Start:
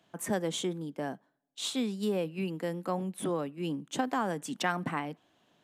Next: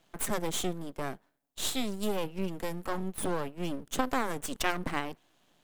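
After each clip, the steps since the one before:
high-shelf EQ 6,900 Hz +10 dB
half-wave rectification
level +3.5 dB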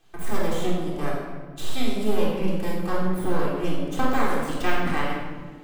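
de-essing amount 80%
rectangular room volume 1,500 cubic metres, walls mixed, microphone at 3.7 metres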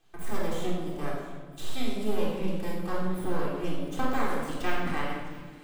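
delay with a high-pass on its return 662 ms, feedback 65%, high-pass 2,400 Hz, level −16.5 dB
level −5.5 dB

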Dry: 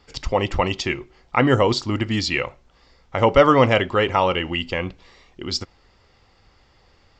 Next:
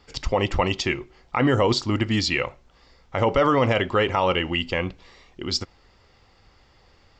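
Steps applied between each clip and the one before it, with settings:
brickwall limiter −10 dBFS, peak gain reduction 8 dB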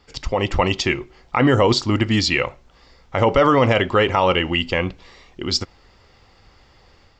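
automatic gain control gain up to 4.5 dB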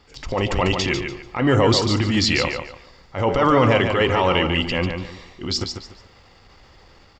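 in parallel at −1 dB: brickwall limiter −14 dBFS, peak gain reduction 8.5 dB
on the sum: transient designer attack −10 dB, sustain +2 dB
repeating echo 145 ms, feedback 27%, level −6.5 dB
level −3.5 dB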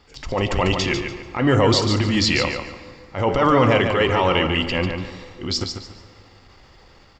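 dense smooth reverb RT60 2.5 s, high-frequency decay 0.6×, DRR 13.5 dB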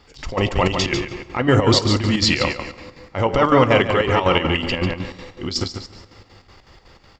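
square-wave tremolo 5.4 Hz, depth 60%, duty 65%
level +2.5 dB

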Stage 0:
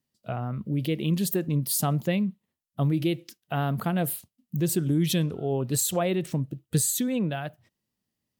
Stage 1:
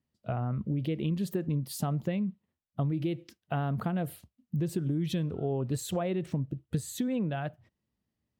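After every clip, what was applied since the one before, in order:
low-pass filter 1,900 Hz 6 dB per octave
parametric band 65 Hz +9.5 dB 0.93 octaves
downward compressor, threshold −27 dBFS, peak gain reduction 9 dB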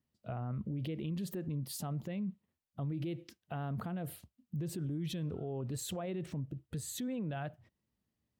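brickwall limiter −30 dBFS, peak gain reduction 11 dB
level −1.5 dB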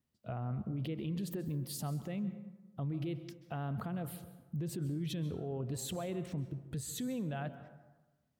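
dense smooth reverb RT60 1.2 s, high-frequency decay 0.45×, pre-delay 120 ms, DRR 12.5 dB

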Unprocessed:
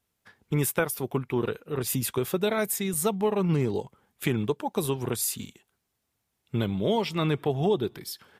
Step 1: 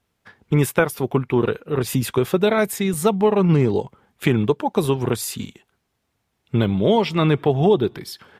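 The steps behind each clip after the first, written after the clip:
high-shelf EQ 6,000 Hz −12 dB
level +8.5 dB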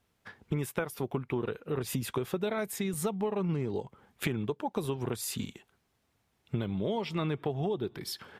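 downward compressor 4 to 1, threshold −29 dBFS, peak gain reduction 15 dB
level −2 dB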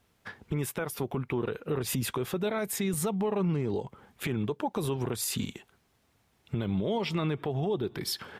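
brickwall limiter −27 dBFS, peak gain reduction 10.5 dB
level +5.5 dB

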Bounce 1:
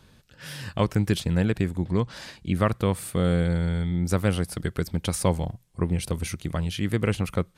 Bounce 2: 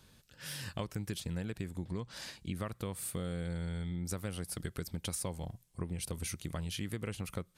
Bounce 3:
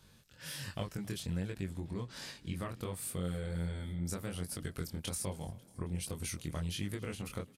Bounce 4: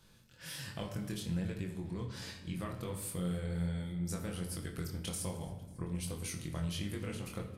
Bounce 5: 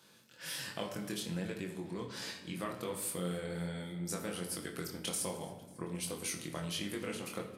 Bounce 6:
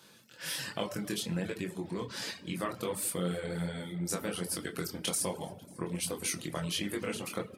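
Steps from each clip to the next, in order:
high-shelf EQ 4,400 Hz +9 dB; downward compressor, threshold −27 dBFS, peak gain reduction 11 dB; level −7.5 dB
chorus effect 1.3 Hz, delay 20 ms, depth 5.6 ms; echo with shifted repeats 272 ms, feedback 64%, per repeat +31 Hz, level −22.5 dB; level +2.5 dB
rectangular room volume 420 cubic metres, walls mixed, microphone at 0.75 metres; level −2 dB
high-pass filter 250 Hz 12 dB per octave; level +4 dB
reverb reduction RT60 0.52 s; level +5 dB

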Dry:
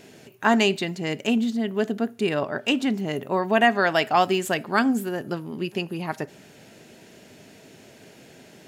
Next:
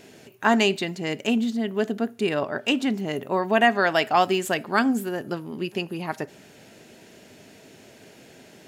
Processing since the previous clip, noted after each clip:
parametric band 150 Hz −2.5 dB 0.77 octaves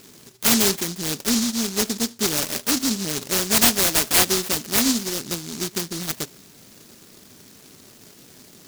short delay modulated by noise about 5,300 Hz, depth 0.41 ms
level +1.5 dB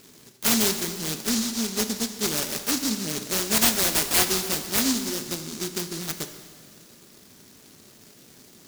dense smooth reverb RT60 2.1 s, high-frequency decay 0.9×, DRR 7.5 dB
level −4 dB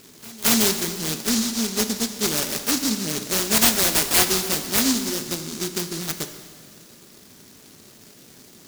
backwards echo 222 ms −23 dB
level +3 dB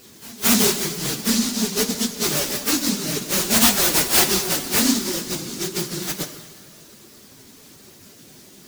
random phases in long frames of 50 ms
level +1.5 dB

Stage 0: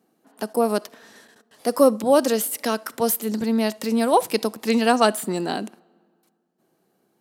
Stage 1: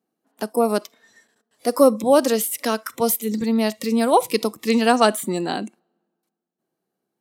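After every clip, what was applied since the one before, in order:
noise reduction from a noise print of the clip's start 14 dB
level +1.5 dB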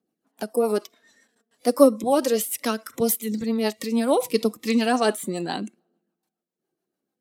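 rotating-speaker cabinet horn 7 Hz
phase shifter 0.34 Hz, delay 4.5 ms, feedback 37%
level −1 dB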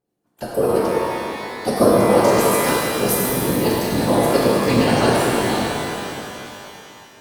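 random phases in short frames
reverb with rising layers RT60 3 s, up +12 semitones, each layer −8 dB, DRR −5 dB
level −1 dB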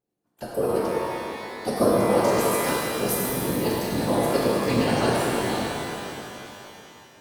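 bucket-brigade delay 390 ms, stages 2,048, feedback 55%, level −20.5 dB
level −6 dB

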